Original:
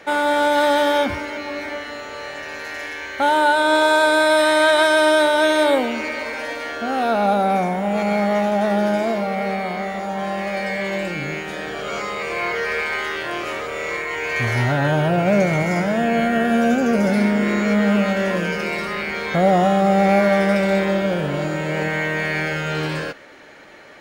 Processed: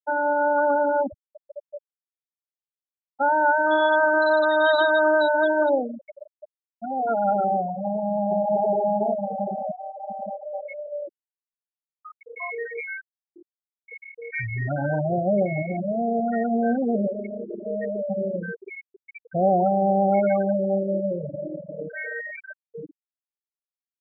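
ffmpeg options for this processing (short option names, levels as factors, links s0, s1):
-filter_complex "[0:a]asplit=2[s0][s1];[s1]afade=t=in:st=7.72:d=0.01,afade=t=out:st=8.56:d=0.01,aecho=0:1:580|1160|1740|2320|2900|3480|4060:0.794328|0.397164|0.198582|0.099291|0.0496455|0.0248228|0.0124114[s2];[s0][s2]amix=inputs=2:normalize=0,asettb=1/sr,asplit=3[s3][s4][s5];[s3]atrim=end=17.074[s6];[s4]atrim=start=17.07:end=18.1,asetpts=PTS-STARTPTS,afade=t=in:d=0.004:c=qsin,afade=t=out:st=1.026:d=0.004:c=qsin,highpass=f=260:w=0.5412,highpass=f=260:w=1.3066[s7];[s5]atrim=start=18.096[s8];[s6][s7]acrossfade=d=0.004:c1=hsin:c2=qsin[s9];[s9][s8]acrossfade=d=0.004:c1=qsin:c2=hsin,bass=f=250:g=-4,treble=f=4000:g=2,afftfilt=real='re*gte(hypot(re,im),0.355)':imag='im*gte(hypot(re,im),0.355)':win_size=1024:overlap=0.75,volume=0.708"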